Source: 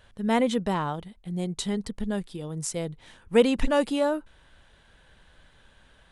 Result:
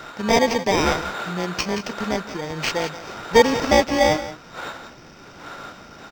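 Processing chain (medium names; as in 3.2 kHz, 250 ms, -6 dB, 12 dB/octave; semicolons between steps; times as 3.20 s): bit-reversed sample order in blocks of 32 samples; wind noise 600 Hz -25 dBFS; differentiator; in parallel at +0.5 dB: compression, threshold -38 dBFS, peak gain reduction 22.5 dB; on the sum: small resonant body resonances 1.4/3.7 kHz, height 15 dB, ringing for 30 ms; on a send: delay 175 ms -9 dB; on the sum: decimation joined by straight lines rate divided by 4×; trim +4.5 dB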